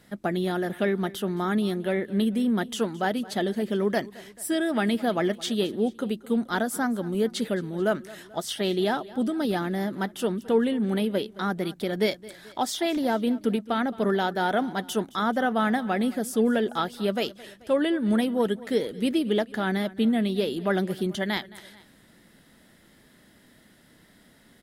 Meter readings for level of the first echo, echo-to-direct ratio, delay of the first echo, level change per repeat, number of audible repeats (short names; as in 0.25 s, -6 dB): -20.0 dB, -19.0 dB, 0.218 s, -5.0 dB, 2